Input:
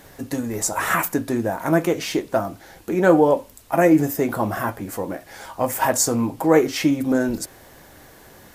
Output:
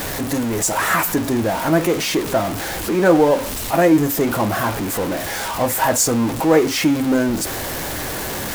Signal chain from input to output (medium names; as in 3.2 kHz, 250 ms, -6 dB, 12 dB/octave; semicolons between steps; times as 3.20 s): jump at every zero crossing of -20.5 dBFS